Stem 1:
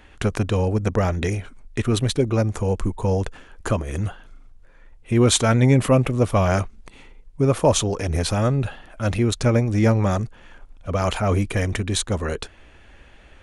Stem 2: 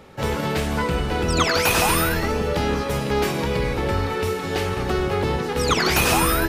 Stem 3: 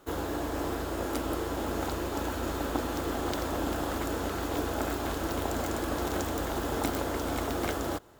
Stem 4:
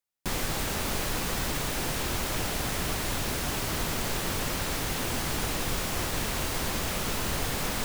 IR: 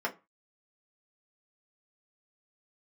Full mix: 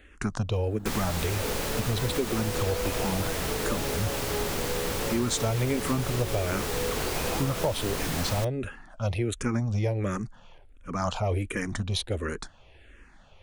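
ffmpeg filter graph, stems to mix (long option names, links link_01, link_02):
-filter_complex "[0:a]asplit=2[link_01][link_02];[link_02]afreqshift=-1.4[link_03];[link_01][link_03]amix=inputs=2:normalize=1,volume=-2.5dB[link_04];[1:a]equalizer=frequency=500:width_type=o:width=1.1:gain=14,adelay=1200,volume=-19.5dB[link_05];[2:a]adelay=450,volume=-19.5dB[link_06];[3:a]adelay=600,volume=-0.5dB[link_07];[link_04][link_05][link_06][link_07]amix=inputs=4:normalize=0,acompressor=threshold=-23dB:ratio=6"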